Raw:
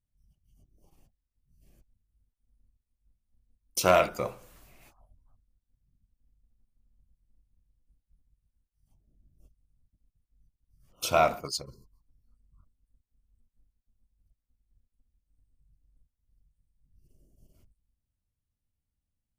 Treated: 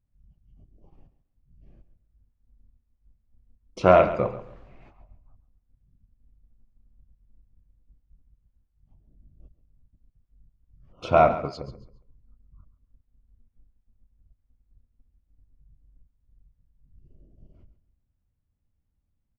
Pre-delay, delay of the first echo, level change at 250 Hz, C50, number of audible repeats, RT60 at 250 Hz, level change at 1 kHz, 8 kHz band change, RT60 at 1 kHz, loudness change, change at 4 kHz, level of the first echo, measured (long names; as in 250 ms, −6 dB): no reverb audible, 137 ms, +8.0 dB, no reverb audible, 2, no reverb audible, +5.0 dB, below −15 dB, no reverb audible, +5.5 dB, −8.0 dB, −14.0 dB